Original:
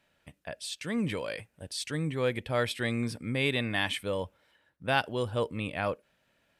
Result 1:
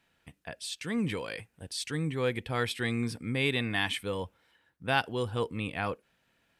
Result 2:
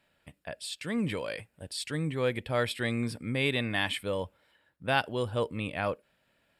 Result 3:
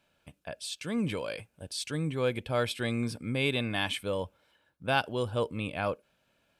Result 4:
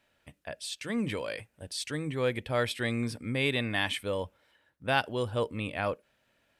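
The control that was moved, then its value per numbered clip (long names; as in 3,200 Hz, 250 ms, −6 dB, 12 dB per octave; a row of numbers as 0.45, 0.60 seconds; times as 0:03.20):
notch filter, centre frequency: 590, 6,100, 1,900, 170 Hertz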